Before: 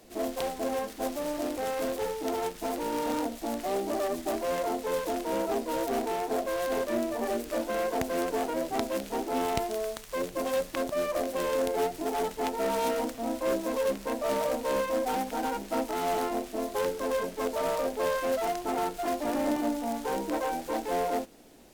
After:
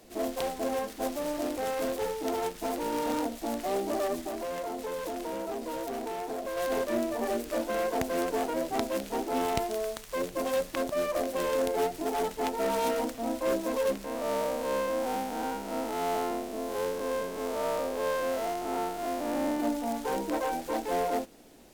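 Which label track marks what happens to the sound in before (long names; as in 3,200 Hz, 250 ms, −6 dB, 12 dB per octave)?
4.240000	6.570000	downward compressor, threshold −31 dBFS
14.040000	19.600000	spectrum smeared in time width 138 ms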